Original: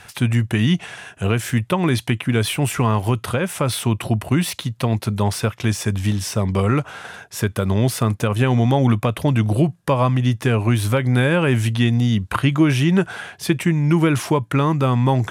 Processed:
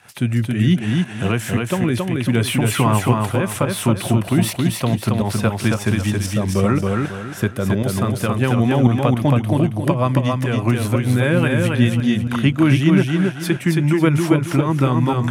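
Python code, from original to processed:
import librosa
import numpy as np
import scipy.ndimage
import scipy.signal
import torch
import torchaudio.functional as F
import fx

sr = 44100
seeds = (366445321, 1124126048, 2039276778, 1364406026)

p1 = scipy.signal.sosfilt(scipy.signal.butter(2, 110.0, 'highpass', fs=sr, output='sos'), x)
p2 = fx.peak_eq(p1, sr, hz=4800.0, db=-3.5, octaves=1.7)
p3 = fx.notch(p2, sr, hz=440.0, q=12.0)
p4 = fx.rider(p3, sr, range_db=10, speed_s=2.0)
p5 = p3 + (p4 * 10.0 ** (1.5 / 20.0))
p6 = fx.rotary_switch(p5, sr, hz=0.65, then_hz=5.0, switch_at_s=3.09)
p7 = fx.volume_shaper(p6, sr, bpm=115, per_beat=1, depth_db=-11, release_ms=138.0, shape='fast start')
p8 = p7 + fx.echo_feedback(p7, sr, ms=273, feedback_pct=32, wet_db=-3, dry=0)
y = p8 * 10.0 ** (-4.0 / 20.0)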